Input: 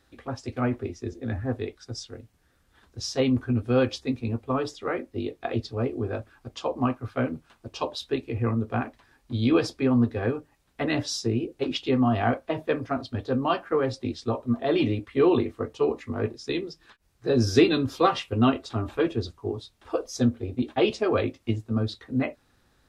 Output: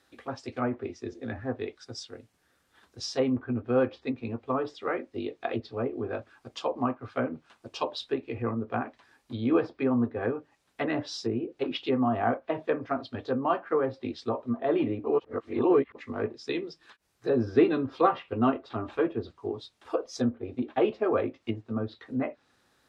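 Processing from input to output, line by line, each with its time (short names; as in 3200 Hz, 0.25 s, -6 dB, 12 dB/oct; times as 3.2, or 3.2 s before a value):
15.04–15.95 reverse
whole clip: dynamic EQ 6400 Hz, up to -4 dB, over -54 dBFS, Q 2.8; treble ducked by the level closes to 1500 Hz, closed at -22 dBFS; HPF 310 Hz 6 dB/oct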